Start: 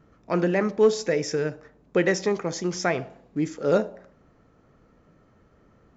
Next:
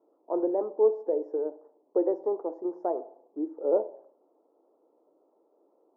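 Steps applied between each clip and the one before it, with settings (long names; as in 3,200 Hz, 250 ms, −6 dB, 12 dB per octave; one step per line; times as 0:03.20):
elliptic band-pass filter 320–930 Hz, stop band 50 dB
level −2.5 dB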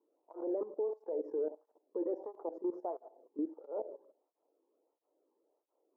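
output level in coarse steps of 16 dB
brickwall limiter −30 dBFS, peak gain reduction 7.5 dB
through-zero flanger with one copy inverted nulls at 1.5 Hz, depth 1.6 ms
level +3 dB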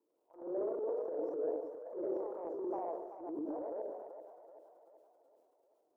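delay with pitch and tempo change per echo 94 ms, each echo +1 semitone, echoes 2
echo with a time of its own for lows and highs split 550 Hz, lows 98 ms, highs 384 ms, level −7 dB
transient designer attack −10 dB, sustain +6 dB
level −2.5 dB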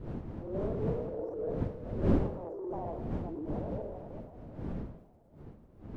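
wind on the microphone 230 Hz −37 dBFS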